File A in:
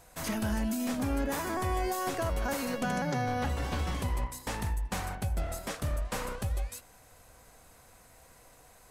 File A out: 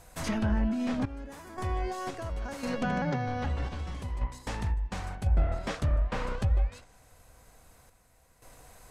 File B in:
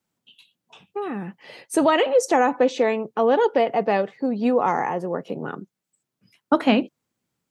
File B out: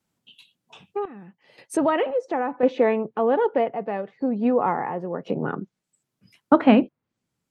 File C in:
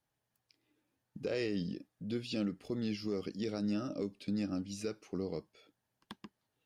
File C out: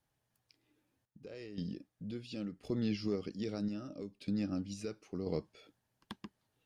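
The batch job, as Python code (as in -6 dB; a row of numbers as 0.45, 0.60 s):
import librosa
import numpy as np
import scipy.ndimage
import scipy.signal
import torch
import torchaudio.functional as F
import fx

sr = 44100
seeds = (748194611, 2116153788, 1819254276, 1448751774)

y = fx.tremolo_random(x, sr, seeds[0], hz=1.9, depth_pct=85)
y = fx.low_shelf(y, sr, hz=130.0, db=6.0)
y = fx.env_lowpass_down(y, sr, base_hz=2100.0, full_db=-26.0)
y = y * 10.0 ** (3.0 / 20.0)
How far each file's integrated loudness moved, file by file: +1.0, -1.5, -1.5 LU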